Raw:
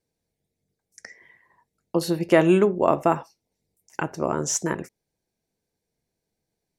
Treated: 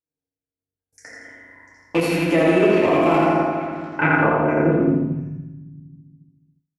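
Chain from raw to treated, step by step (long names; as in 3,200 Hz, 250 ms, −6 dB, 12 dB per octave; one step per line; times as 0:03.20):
loose part that buzzes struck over −31 dBFS, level −16 dBFS
feedback delay network reverb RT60 1.9 s, low-frequency decay 1.55×, high-frequency decay 0.3×, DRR −7 dB
sample-and-hold tremolo
brickwall limiter −8.5 dBFS, peak gain reduction 7.5 dB
low-pass filter sweep 11,000 Hz → 140 Hz, 0:03.25–0:05.22
repeating echo 83 ms, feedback 49%, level −4 dB
noise gate with hold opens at −53 dBFS
high-shelf EQ 6,100 Hz −8.5 dB
echo through a band-pass that steps 232 ms, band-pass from 710 Hz, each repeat 1.4 octaves, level −7.5 dB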